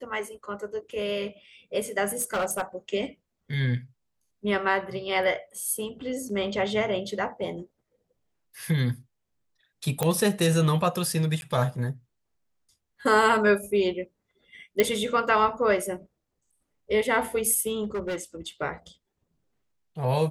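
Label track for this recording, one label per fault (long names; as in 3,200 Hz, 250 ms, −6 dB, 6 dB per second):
2.080000	2.620000	clipping −22.5 dBFS
6.290000	6.290000	drop-out 3.9 ms
10.030000	10.030000	click −11 dBFS
11.410000	11.420000	drop-out
14.800000	14.800000	click −7 dBFS
17.830000	18.210000	clipping −26.5 dBFS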